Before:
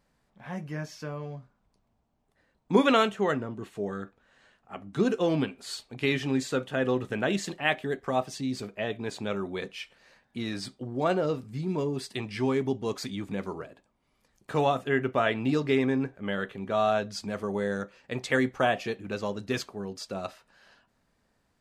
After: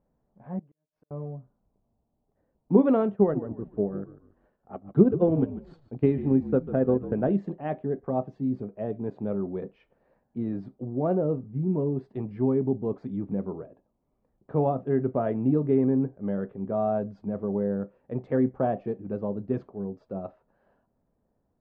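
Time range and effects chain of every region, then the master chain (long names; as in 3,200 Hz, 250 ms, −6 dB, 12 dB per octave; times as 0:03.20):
0:00.59–0:01.11: low-shelf EQ 200 Hz −8.5 dB + gate with flip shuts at −32 dBFS, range −41 dB + downward compressor 4 to 1, threshold −60 dBFS
0:03.15–0:07.31: transient designer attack +6 dB, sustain −9 dB + echo with shifted repeats 145 ms, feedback 35%, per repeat −51 Hz, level −14 dB
whole clip: Chebyshev low-pass filter 610 Hz, order 2; dynamic equaliser 170 Hz, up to +6 dB, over −41 dBFS, Q 0.8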